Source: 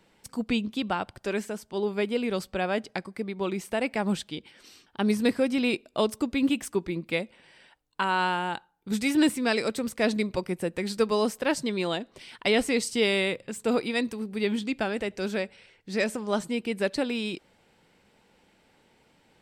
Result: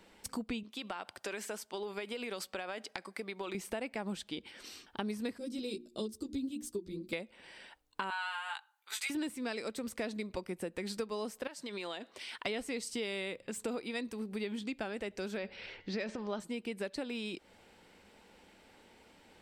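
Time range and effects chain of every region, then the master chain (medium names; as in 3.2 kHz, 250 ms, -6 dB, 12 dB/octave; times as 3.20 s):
0.63–3.55 s: high-pass 760 Hz 6 dB/octave + compression, threshold -33 dBFS
5.38–7.13 s: high-order bell 1.3 kHz -15.5 dB 2.5 oct + hum notches 60/120/180/240/300/360 Hz + three-phase chorus
8.10–9.10 s: high-pass 1 kHz 24 dB/octave + band-stop 5.3 kHz, Q 11 + doubling 15 ms -3 dB
11.47–12.46 s: low-pass 1.3 kHz 6 dB/octave + tilt EQ +4.5 dB/octave + compression, threshold -36 dBFS
15.37–16.40 s: low-pass 5.2 kHz 24 dB/octave + transient shaper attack +2 dB, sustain +8 dB + de-hum 180.8 Hz, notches 27
whole clip: peaking EQ 140 Hz -14 dB 0.32 oct; compression 5:1, threshold -39 dBFS; trim +2.5 dB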